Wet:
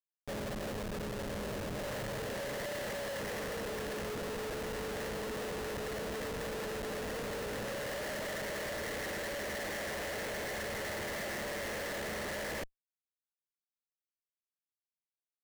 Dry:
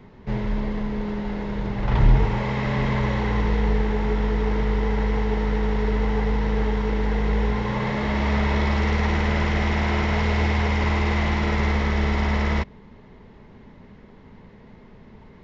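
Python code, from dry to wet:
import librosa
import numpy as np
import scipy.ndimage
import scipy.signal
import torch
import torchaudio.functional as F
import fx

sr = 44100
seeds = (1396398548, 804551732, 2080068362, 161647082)

y = fx.double_bandpass(x, sr, hz=1000.0, octaves=1.6)
y = fx.quant_dither(y, sr, seeds[0], bits=8, dither='triangular')
y = fx.schmitt(y, sr, flips_db=-37.0)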